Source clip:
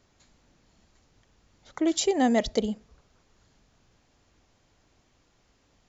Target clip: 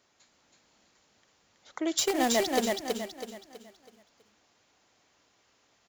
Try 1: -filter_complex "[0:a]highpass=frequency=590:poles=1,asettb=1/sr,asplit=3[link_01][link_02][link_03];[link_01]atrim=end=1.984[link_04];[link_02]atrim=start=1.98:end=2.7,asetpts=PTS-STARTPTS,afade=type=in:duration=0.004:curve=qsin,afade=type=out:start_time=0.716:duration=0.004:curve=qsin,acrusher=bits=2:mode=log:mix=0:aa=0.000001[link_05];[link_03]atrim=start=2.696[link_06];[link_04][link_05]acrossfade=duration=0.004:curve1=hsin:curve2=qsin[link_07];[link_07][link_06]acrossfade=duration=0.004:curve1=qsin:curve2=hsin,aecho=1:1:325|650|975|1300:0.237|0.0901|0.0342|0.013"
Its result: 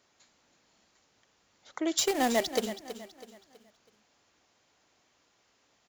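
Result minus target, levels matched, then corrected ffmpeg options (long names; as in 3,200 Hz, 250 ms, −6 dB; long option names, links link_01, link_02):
echo-to-direct −9.5 dB
-filter_complex "[0:a]highpass=frequency=590:poles=1,asettb=1/sr,asplit=3[link_01][link_02][link_03];[link_01]atrim=end=1.984[link_04];[link_02]atrim=start=1.98:end=2.7,asetpts=PTS-STARTPTS,afade=type=in:duration=0.004:curve=qsin,afade=type=out:start_time=0.716:duration=0.004:curve=qsin,acrusher=bits=2:mode=log:mix=0:aa=0.000001[link_05];[link_03]atrim=start=2.696[link_06];[link_04][link_05]acrossfade=duration=0.004:curve1=hsin:curve2=qsin[link_07];[link_07][link_06]acrossfade=duration=0.004:curve1=qsin:curve2=hsin,aecho=1:1:325|650|975|1300|1625:0.708|0.269|0.102|0.0388|0.0148"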